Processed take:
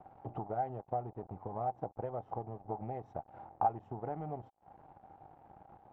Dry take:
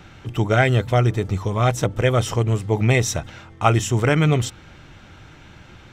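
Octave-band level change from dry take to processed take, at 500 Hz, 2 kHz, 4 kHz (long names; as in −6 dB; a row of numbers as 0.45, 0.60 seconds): −19.0 dB, −37.0 dB, below −40 dB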